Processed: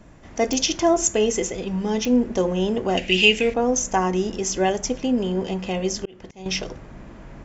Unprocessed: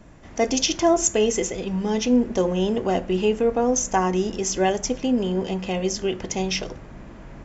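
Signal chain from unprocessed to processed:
0:02.97–0:03.54: high shelf with overshoot 1,700 Hz +12 dB, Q 3
0:04.62–0:06.46: volume swells 493 ms
digital clicks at 0:00.53/0:02.05, −12 dBFS

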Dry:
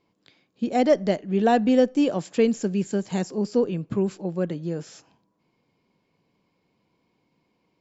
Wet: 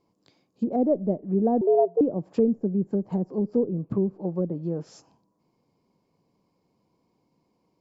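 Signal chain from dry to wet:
flat-topped bell 2,300 Hz −9.5 dB
treble cut that deepens with the level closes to 480 Hz, closed at −21 dBFS
0:01.61–0:02.01: frequency shifter +170 Hz

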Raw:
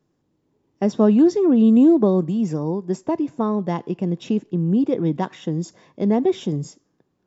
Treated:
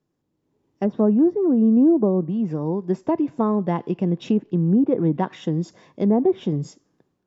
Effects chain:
treble cut that deepens with the level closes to 1,000 Hz, closed at −14.5 dBFS
automatic gain control gain up to 9 dB
level −6.5 dB

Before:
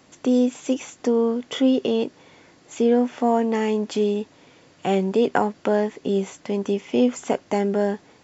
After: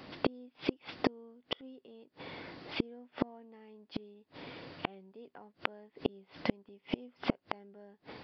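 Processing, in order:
downsampling to 11,025 Hz
gate with flip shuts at −19 dBFS, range −37 dB
level +4.5 dB

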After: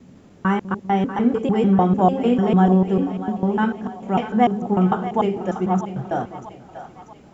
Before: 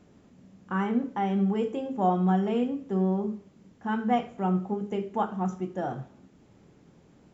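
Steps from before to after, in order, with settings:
slices reordered back to front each 149 ms, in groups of 3
echo with a time of its own for lows and highs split 570 Hz, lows 198 ms, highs 639 ms, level −11.5 dB
level +8.5 dB

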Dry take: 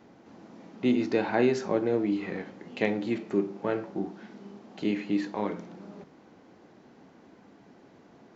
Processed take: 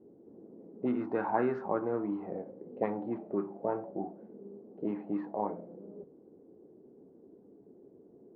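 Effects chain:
envelope-controlled low-pass 400–1,300 Hz up, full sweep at −21 dBFS
level −7.5 dB

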